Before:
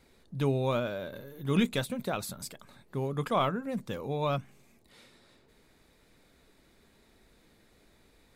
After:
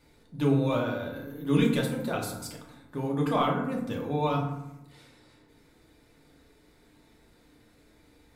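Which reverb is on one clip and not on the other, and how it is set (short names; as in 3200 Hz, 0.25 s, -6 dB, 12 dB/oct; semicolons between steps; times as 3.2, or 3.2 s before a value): FDN reverb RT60 0.88 s, low-frequency decay 1.35×, high-frequency decay 0.5×, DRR -2 dB; gain -2 dB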